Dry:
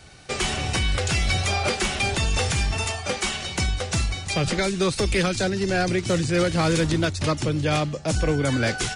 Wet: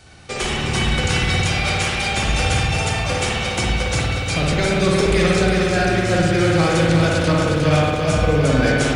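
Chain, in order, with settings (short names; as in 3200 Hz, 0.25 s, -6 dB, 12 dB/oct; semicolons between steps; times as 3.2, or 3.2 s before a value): 1.41–2.12 HPF 870 Hz 6 dB/oct; spring tank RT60 1.5 s, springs 54 ms, chirp 50 ms, DRR -2.5 dB; lo-fi delay 0.36 s, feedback 55%, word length 9-bit, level -4.5 dB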